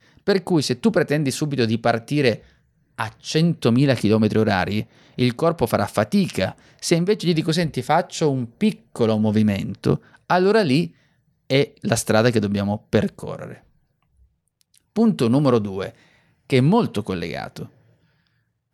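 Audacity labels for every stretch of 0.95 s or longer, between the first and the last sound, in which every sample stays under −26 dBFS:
13.520000	14.960000	silence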